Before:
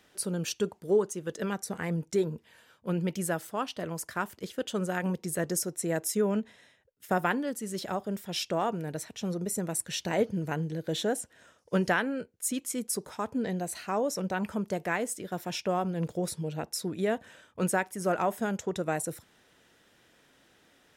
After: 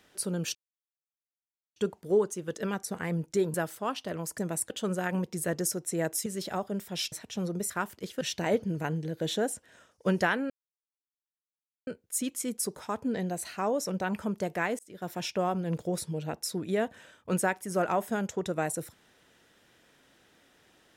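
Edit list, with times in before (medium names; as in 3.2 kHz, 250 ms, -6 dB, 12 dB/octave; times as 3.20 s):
0.55 s: insert silence 1.21 s
2.33–3.26 s: delete
4.10–4.61 s: swap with 9.56–9.88 s
6.17–7.63 s: delete
8.49–8.98 s: delete
12.17 s: insert silence 1.37 s
15.09–15.42 s: fade in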